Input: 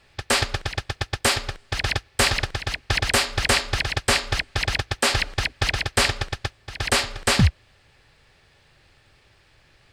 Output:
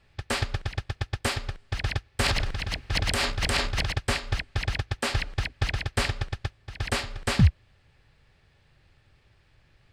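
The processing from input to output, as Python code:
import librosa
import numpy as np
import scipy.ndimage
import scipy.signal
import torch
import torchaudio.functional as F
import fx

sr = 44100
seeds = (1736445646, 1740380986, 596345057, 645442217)

y = fx.bass_treble(x, sr, bass_db=7, treble_db=-4)
y = fx.transient(y, sr, attack_db=-5, sustain_db=11, at=(2.21, 3.92))
y = F.gain(torch.from_numpy(y), -7.5).numpy()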